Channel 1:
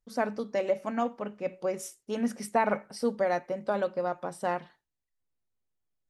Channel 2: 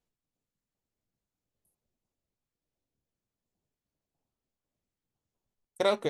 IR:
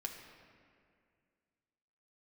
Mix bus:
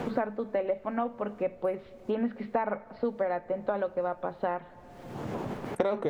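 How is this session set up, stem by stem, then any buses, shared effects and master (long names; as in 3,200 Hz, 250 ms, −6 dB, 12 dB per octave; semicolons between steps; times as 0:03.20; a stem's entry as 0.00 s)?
+0.5 dB, 0.00 s, send −15.5 dB, elliptic low-pass filter 4,100 Hz; low-shelf EQ 250 Hz −6.5 dB
+2.5 dB, 0.00 s, send −18.5 dB, envelope flattener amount 50%; automatic ducking −14 dB, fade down 0.50 s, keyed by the first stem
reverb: on, RT60 2.2 s, pre-delay 3 ms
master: low-pass filter 3,000 Hz 6 dB per octave; high-shelf EQ 2,100 Hz −9.5 dB; multiband upward and downward compressor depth 100%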